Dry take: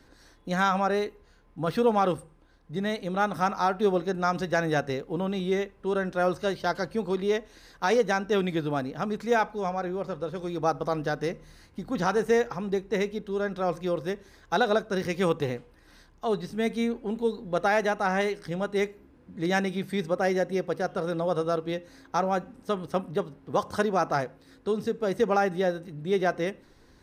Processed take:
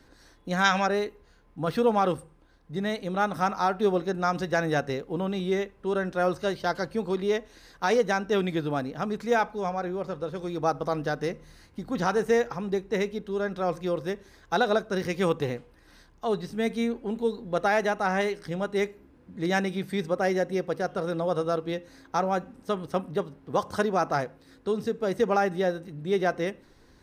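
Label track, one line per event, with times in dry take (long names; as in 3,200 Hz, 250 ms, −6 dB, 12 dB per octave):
0.650000	0.860000	gain on a spectral selection 1,400–7,700 Hz +10 dB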